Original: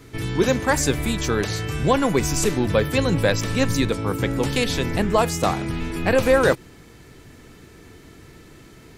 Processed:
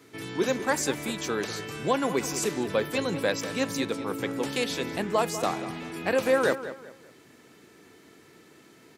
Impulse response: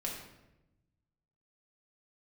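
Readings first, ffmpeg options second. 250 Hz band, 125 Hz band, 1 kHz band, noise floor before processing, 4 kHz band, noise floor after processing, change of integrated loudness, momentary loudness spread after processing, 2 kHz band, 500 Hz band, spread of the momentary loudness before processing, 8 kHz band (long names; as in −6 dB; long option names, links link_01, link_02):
−8.0 dB, −15.5 dB, −5.5 dB, −47 dBFS, −6.0 dB, −55 dBFS, −7.0 dB, 8 LU, −6.0 dB, −6.0 dB, 6 LU, −6.0 dB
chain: -filter_complex "[0:a]highpass=220,asplit=2[link_01][link_02];[link_02]adelay=195,lowpass=frequency=3000:poles=1,volume=-12dB,asplit=2[link_03][link_04];[link_04]adelay=195,lowpass=frequency=3000:poles=1,volume=0.33,asplit=2[link_05][link_06];[link_06]adelay=195,lowpass=frequency=3000:poles=1,volume=0.33[link_07];[link_03][link_05][link_07]amix=inputs=3:normalize=0[link_08];[link_01][link_08]amix=inputs=2:normalize=0,volume=-6dB"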